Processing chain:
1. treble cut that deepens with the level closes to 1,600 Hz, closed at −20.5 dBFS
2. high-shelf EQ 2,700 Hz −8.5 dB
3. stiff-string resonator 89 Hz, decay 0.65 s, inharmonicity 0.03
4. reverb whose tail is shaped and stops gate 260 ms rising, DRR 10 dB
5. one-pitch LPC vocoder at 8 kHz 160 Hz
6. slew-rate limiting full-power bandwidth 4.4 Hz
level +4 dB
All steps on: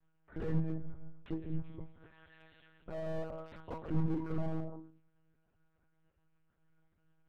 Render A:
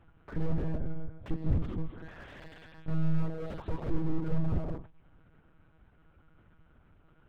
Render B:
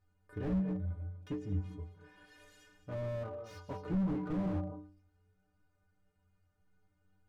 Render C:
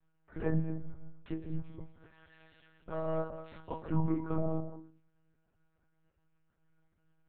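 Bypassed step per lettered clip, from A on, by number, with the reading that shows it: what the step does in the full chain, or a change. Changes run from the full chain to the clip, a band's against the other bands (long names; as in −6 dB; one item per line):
3, 500 Hz band −3.5 dB
5, 250 Hz band +2.0 dB
6, distortion level −7 dB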